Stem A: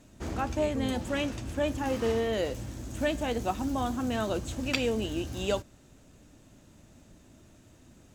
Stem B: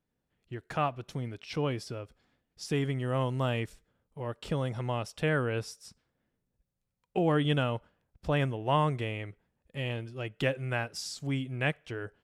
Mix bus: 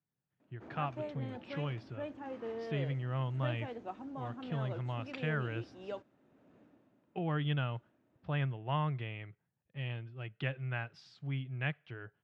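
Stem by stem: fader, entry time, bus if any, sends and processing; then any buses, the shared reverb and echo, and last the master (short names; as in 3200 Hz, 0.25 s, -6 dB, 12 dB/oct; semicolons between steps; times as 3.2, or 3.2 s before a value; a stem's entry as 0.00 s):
-1.0 dB, 0.40 s, no send, auto duck -11 dB, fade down 0.45 s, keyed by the second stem
0.0 dB, 0.00 s, no send, graphic EQ 125/250/500/1000/2000/4000/8000 Hz +10/-10/-11/-5/-3/+3/-11 dB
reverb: off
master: BPF 220–2300 Hz; mismatched tape noise reduction decoder only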